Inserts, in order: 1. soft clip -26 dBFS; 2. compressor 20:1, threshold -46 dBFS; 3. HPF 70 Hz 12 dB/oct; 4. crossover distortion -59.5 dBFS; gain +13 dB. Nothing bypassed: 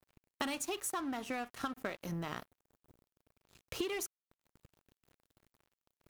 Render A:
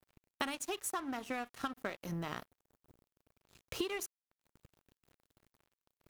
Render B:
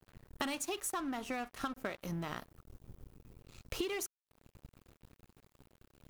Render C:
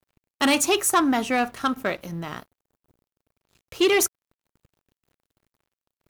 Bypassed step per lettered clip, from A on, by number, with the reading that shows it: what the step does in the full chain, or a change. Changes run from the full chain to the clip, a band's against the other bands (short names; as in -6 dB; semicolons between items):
1, distortion -12 dB; 3, momentary loudness spread change +15 LU; 2, mean gain reduction 5.5 dB